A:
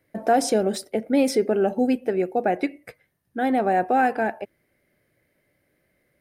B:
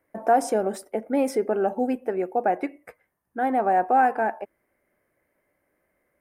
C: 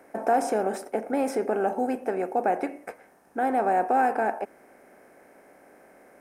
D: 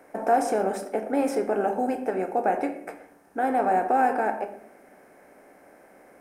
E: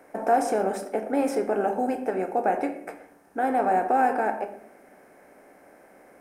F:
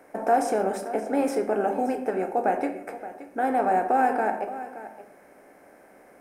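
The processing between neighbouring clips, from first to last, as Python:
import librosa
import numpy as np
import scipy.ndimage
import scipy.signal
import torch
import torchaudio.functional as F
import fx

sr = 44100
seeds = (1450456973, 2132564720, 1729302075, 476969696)

y1 = fx.graphic_eq(x, sr, hz=(125, 1000, 4000), db=(-9, 9, -12))
y1 = y1 * 10.0 ** (-3.5 / 20.0)
y2 = fx.bin_compress(y1, sr, power=0.6)
y2 = y2 * 10.0 ** (-5.0 / 20.0)
y3 = fx.room_shoebox(y2, sr, seeds[0], volume_m3=130.0, walls='mixed', distance_m=0.43)
y4 = y3
y5 = y4 + 10.0 ** (-14.5 / 20.0) * np.pad(y4, (int(573 * sr / 1000.0), 0))[:len(y4)]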